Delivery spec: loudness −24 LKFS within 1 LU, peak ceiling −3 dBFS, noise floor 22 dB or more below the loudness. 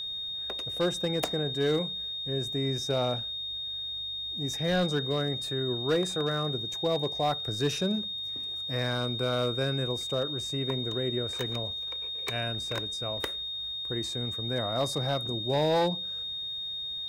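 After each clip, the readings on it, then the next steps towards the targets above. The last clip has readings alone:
share of clipped samples 0.6%; peaks flattened at −20.0 dBFS; interfering tone 3,700 Hz; level of the tone −33 dBFS; integrated loudness −30.0 LKFS; sample peak −20.0 dBFS; target loudness −24.0 LKFS
→ clipped peaks rebuilt −20 dBFS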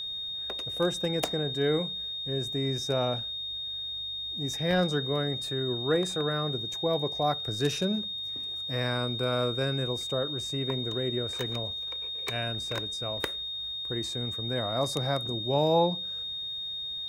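share of clipped samples 0.0%; interfering tone 3,700 Hz; level of the tone −33 dBFS
→ notch filter 3,700 Hz, Q 30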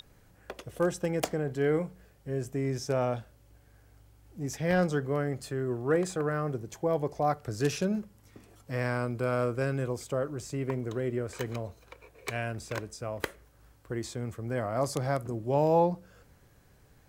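interfering tone none found; integrated loudness −31.5 LKFS; sample peak −12.0 dBFS; target loudness −24.0 LKFS
→ level +7.5 dB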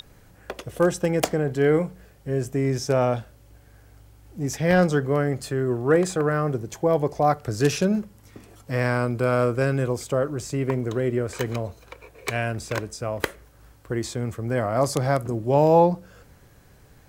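integrated loudness −24.0 LKFS; sample peak −4.5 dBFS; background noise floor −53 dBFS

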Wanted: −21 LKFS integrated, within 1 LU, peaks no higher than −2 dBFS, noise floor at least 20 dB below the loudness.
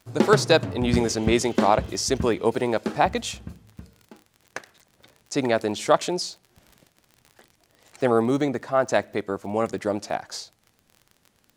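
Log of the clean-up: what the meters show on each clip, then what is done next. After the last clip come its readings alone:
crackle rate 35 per second; integrated loudness −23.5 LKFS; sample peak −2.5 dBFS; target loudness −21.0 LKFS
→ click removal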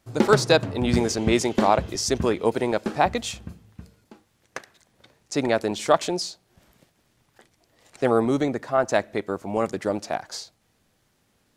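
crackle rate 0.17 per second; integrated loudness −23.5 LKFS; sample peak −2.5 dBFS; target loudness −21.0 LKFS
→ level +2.5 dB
brickwall limiter −2 dBFS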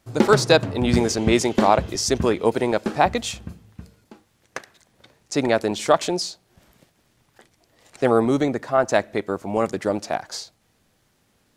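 integrated loudness −21.0 LKFS; sample peak −2.0 dBFS; background noise floor −65 dBFS

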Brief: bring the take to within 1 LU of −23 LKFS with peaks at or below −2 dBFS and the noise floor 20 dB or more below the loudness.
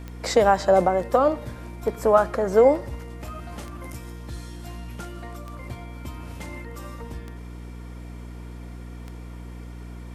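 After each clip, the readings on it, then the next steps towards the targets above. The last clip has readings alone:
number of clicks 6; mains hum 60 Hz; hum harmonics up to 300 Hz; level of the hum −35 dBFS; integrated loudness −20.5 LKFS; sample peak −4.5 dBFS; target loudness −23.0 LKFS
→ click removal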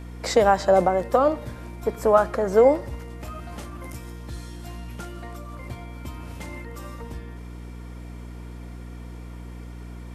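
number of clicks 0; mains hum 60 Hz; hum harmonics up to 300 Hz; level of the hum −35 dBFS
→ mains-hum notches 60/120/180/240/300 Hz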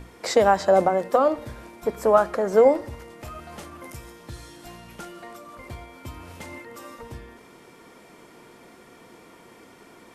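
mains hum none found; integrated loudness −20.5 LKFS; sample peak −4.5 dBFS; target loudness −23.0 LKFS
→ level −2.5 dB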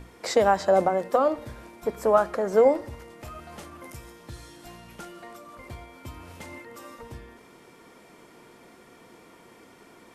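integrated loudness −23.0 LKFS; sample peak −7.0 dBFS; background noise floor −53 dBFS

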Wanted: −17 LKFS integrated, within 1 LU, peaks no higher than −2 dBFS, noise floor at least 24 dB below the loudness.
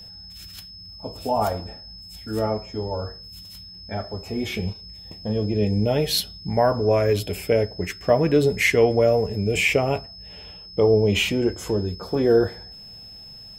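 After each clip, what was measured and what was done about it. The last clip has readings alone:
crackle rate 38 per second; interfering tone 5,200 Hz; level of the tone −40 dBFS; integrated loudness −22.5 LKFS; sample peak −5.5 dBFS; target loudness −17.0 LKFS
→ click removal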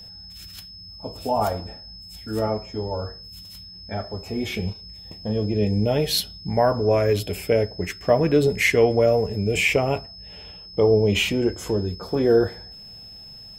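crackle rate 0.074 per second; interfering tone 5,200 Hz; level of the tone −40 dBFS
→ notch filter 5,200 Hz, Q 30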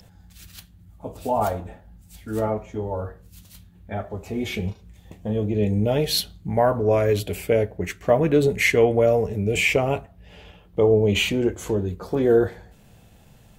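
interfering tone none found; integrated loudness −22.5 LKFS; sample peak −6.0 dBFS; target loudness −17.0 LKFS
→ level +5.5 dB
brickwall limiter −2 dBFS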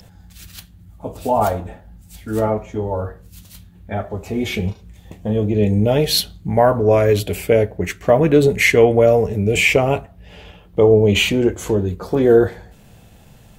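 integrated loudness −17.0 LKFS; sample peak −2.0 dBFS; background noise floor −47 dBFS

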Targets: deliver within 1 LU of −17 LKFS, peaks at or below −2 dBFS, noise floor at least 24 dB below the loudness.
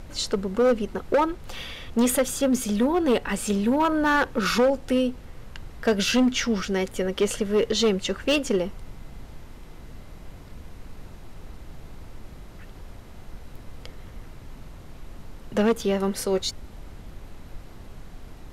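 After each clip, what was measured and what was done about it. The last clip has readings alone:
share of clipped samples 1.5%; peaks flattened at −15.5 dBFS; background noise floor −44 dBFS; target noise floor −48 dBFS; integrated loudness −24.0 LKFS; sample peak −15.5 dBFS; target loudness −17.0 LKFS
→ clipped peaks rebuilt −15.5 dBFS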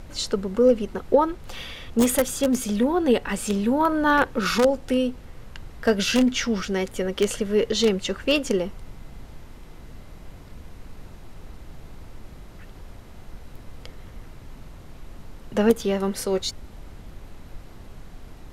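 share of clipped samples 0.0%; background noise floor −44 dBFS; target noise floor −47 dBFS
→ noise reduction from a noise print 6 dB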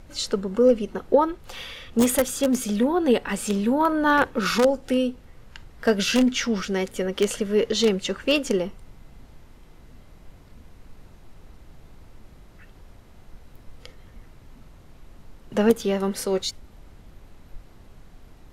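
background noise floor −50 dBFS; integrated loudness −23.0 LKFS; sample peak −6.5 dBFS; target loudness −17.0 LKFS
→ level +6 dB
brickwall limiter −2 dBFS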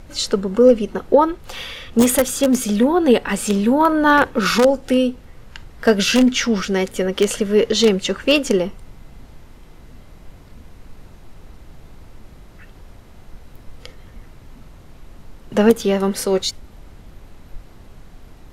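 integrated loudness −17.0 LKFS; sample peak −2.0 dBFS; background noise floor −44 dBFS

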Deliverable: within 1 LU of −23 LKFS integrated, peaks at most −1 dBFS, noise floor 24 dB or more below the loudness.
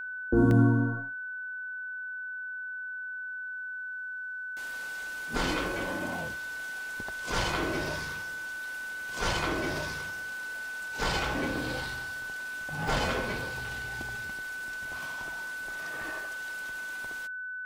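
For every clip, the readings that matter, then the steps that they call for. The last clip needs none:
number of dropouts 5; longest dropout 1.2 ms; interfering tone 1,500 Hz; level of the tone −35 dBFS; integrated loudness −32.5 LKFS; sample peak −11.5 dBFS; target loudness −23.0 LKFS
→ repair the gap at 0:00.51/0:07.09/0:11.25/0:12.88/0:13.66, 1.2 ms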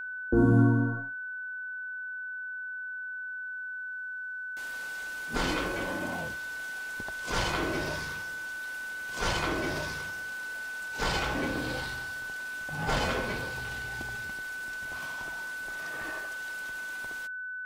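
number of dropouts 0; interfering tone 1,500 Hz; level of the tone −35 dBFS
→ notch filter 1,500 Hz, Q 30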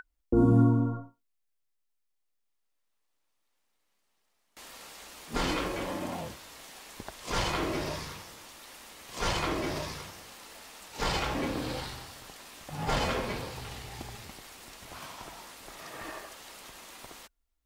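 interfering tone none found; integrated loudness −31.5 LKFS; sample peak −12.0 dBFS; target loudness −23.0 LKFS
→ level +8.5 dB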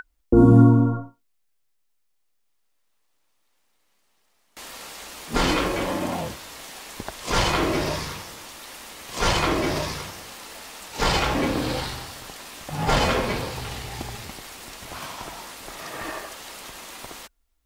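integrated loudness −23.0 LKFS; sample peak −3.5 dBFS; background noise floor −68 dBFS

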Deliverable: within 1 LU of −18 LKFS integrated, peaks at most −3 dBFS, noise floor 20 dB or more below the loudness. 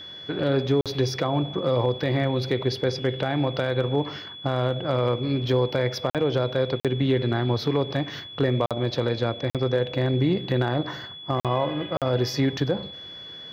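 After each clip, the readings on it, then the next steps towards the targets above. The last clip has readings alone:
number of dropouts 7; longest dropout 47 ms; interfering tone 3,400 Hz; level of the tone −38 dBFS; integrated loudness −25.0 LKFS; sample peak −13.0 dBFS; target loudness −18.0 LKFS
→ repair the gap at 0:00.81/0:06.10/0:06.80/0:08.66/0:09.50/0:11.40/0:11.97, 47 ms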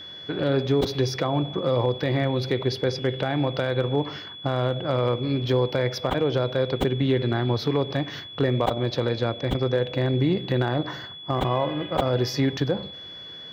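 number of dropouts 0; interfering tone 3,400 Hz; level of the tone −38 dBFS
→ notch filter 3,400 Hz, Q 30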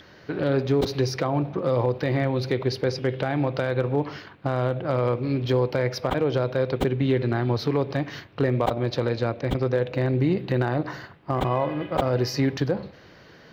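interfering tone none found; integrated loudness −25.0 LKFS; sample peak −8.0 dBFS; target loudness −18.0 LKFS
→ level +7 dB
brickwall limiter −3 dBFS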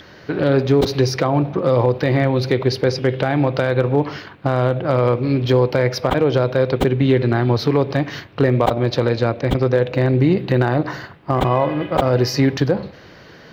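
integrated loudness −18.5 LKFS; sample peak −3.0 dBFS; background noise floor −43 dBFS

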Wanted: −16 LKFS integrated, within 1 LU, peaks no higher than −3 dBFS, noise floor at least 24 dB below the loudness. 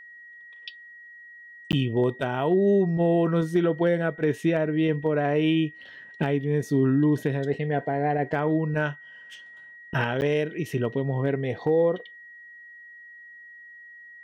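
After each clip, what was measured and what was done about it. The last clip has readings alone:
number of dropouts 2; longest dropout 9.5 ms; interfering tone 1,900 Hz; level of the tone −44 dBFS; integrated loudness −25.0 LKFS; sample peak −12.5 dBFS; target loudness −16.0 LKFS
→ repair the gap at 0:01.72/0:10.21, 9.5 ms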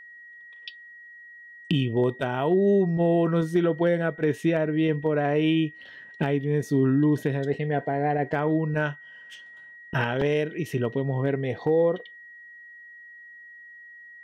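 number of dropouts 0; interfering tone 1,900 Hz; level of the tone −44 dBFS
→ notch filter 1,900 Hz, Q 30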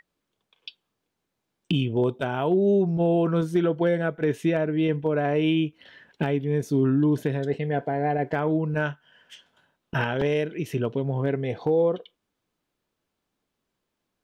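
interfering tone none found; integrated loudness −25.0 LKFS; sample peak −12.5 dBFS; target loudness −16.0 LKFS
→ level +9 dB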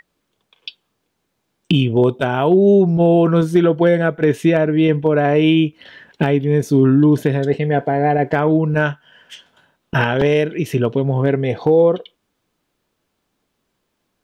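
integrated loudness −16.0 LKFS; sample peak −3.5 dBFS; background noise floor −72 dBFS

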